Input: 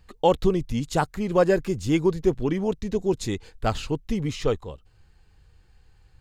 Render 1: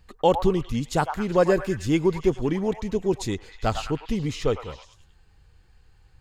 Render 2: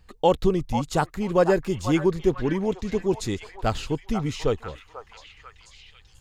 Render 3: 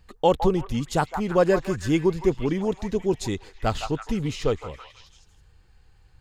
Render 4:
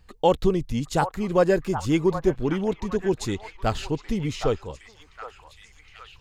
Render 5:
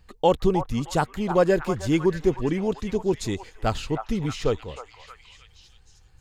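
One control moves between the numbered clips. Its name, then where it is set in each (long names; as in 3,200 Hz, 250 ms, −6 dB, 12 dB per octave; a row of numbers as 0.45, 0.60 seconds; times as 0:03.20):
echo through a band-pass that steps, delay time: 102, 490, 162, 765, 311 milliseconds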